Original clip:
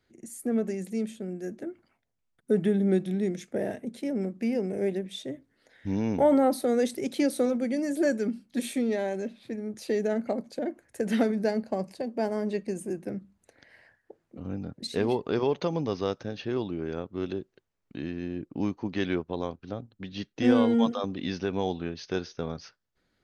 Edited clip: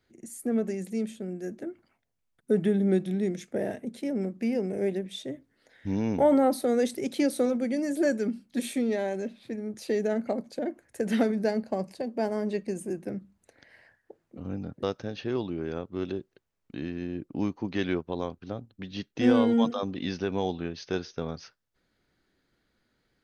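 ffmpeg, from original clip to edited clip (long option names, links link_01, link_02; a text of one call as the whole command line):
ffmpeg -i in.wav -filter_complex "[0:a]asplit=2[link_01][link_02];[link_01]atrim=end=14.832[link_03];[link_02]atrim=start=16.038[link_04];[link_03][link_04]acrossfade=duration=0.004:curve1=hsin:curve2=hsin" out.wav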